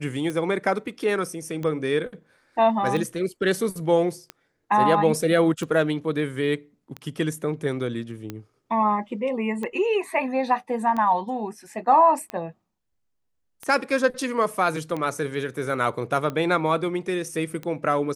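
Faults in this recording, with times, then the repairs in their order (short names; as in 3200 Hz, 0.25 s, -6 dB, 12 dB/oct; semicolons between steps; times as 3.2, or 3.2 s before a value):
tick 45 rpm -18 dBFS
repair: de-click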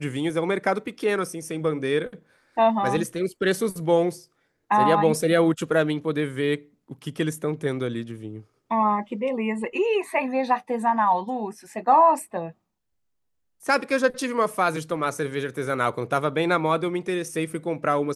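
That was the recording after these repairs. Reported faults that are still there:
none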